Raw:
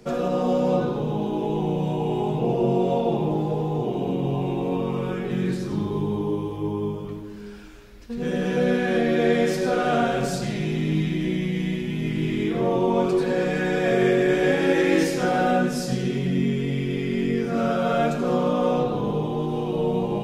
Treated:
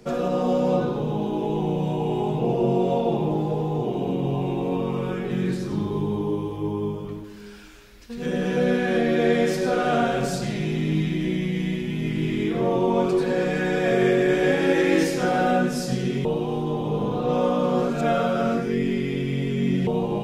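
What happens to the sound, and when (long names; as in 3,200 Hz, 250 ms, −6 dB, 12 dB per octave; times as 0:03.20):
0:07.24–0:08.26: tilt shelving filter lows −4 dB, about 1,200 Hz
0:16.25–0:19.87: reverse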